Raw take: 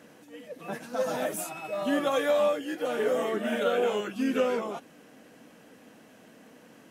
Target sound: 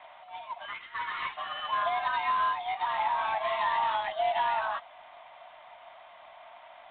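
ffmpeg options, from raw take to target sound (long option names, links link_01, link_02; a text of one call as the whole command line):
ffmpeg -i in.wav -filter_complex "[0:a]asettb=1/sr,asplit=3[link_01][link_02][link_03];[link_01]atrim=end=0.654[link_04];[link_02]atrim=start=0.65:end=1.37,asetpts=PTS-STARTPTS,afade=type=in:duration=0.004:curve=qsin,afade=type=out:start_time=0.716:duration=0.004:curve=qsin,highpass=1000[link_05];[link_03]atrim=start=1.366[link_06];[link_04][link_05]acrossfade=duration=0.004:curve1=hsin:curve2=qsin[link_07];[link_07][link_06]acrossfade=duration=0.004:curve1=qsin:curve2=hsin,asettb=1/sr,asplit=3[link_08][link_09][link_10];[link_08]atrim=end=1.884[link_11];[link_09]atrim=start=1.88:end=3.61,asetpts=PTS-STARTPTS,afade=type=in:duration=0.004:curve=qsin,afade=type=out:start_time=1.726:duration=0.004:curve=qsin,acompressor=threshold=-32dB:ratio=2[link_12];[link_10]atrim=start=3.606[link_13];[link_11][link_12]acrossfade=duration=0.004:curve1=hsin:curve2=qsin[link_14];[link_14][link_13]acrossfade=duration=0.004:curve1=qsin:curve2=hsin,alimiter=limit=-23dB:level=0:latency=1:release=121,afreqshift=440,volume=3dB" -ar 8000 -c:a adpcm_ima_wav out.wav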